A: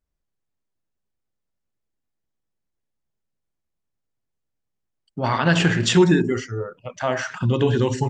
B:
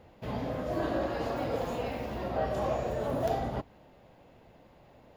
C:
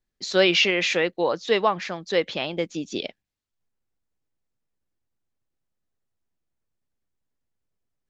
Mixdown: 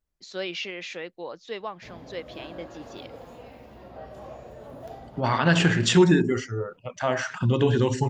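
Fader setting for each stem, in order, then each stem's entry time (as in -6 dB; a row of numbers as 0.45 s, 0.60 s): -2.0 dB, -11.0 dB, -13.5 dB; 0.00 s, 1.60 s, 0.00 s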